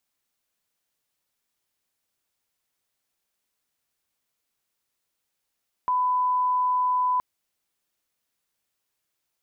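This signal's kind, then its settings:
line-up tone −20 dBFS 1.32 s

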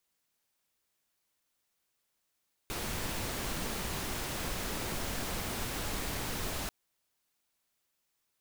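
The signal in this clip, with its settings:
noise pink, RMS −36 dBFS 3.99 s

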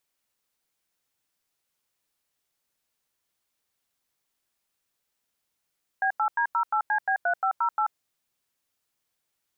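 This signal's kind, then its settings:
touch tones "B8D08CB3508", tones 85 ms, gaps 91 ms, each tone −24 dBFS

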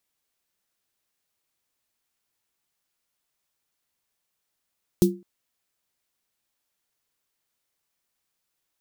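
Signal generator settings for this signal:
synth snare length 0.21 s, tones 190 Hz, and 350 Hz, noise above 3,700 Hz, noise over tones −12 dB, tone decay 0.30 s, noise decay 0.14 s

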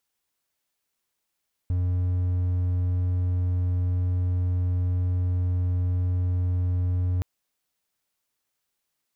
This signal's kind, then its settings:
tone triangle 89.9 Hz −19.5 dBFS 5.52 s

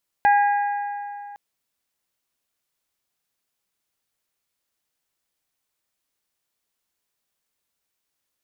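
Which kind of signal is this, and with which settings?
struck metal bell, length 1.11 s, lowest mode 817 Hz, modes 4, decay 2.74 s, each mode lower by 8 dB, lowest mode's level −12.5 dB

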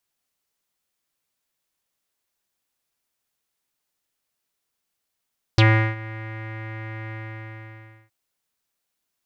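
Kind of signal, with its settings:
subtractive voice square A2 12 dB per octave, low-pass 2,000 Hz, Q 6.1, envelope 1.5 octaves, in 0.05 s, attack 1.2 ms, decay 0.37 s, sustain −21 dB, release 0.99 s, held 1.53 s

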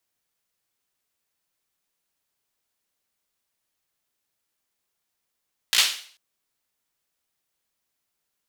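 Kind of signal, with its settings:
synth clap length 0.44 s, apart 17 ms, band 3,400 Hz, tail 0.48 s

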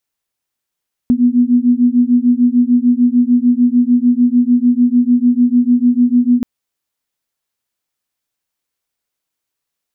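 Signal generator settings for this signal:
two tones that beat 241 Hz, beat 6.7 Hz, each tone −11.5 dBFS 5.33 s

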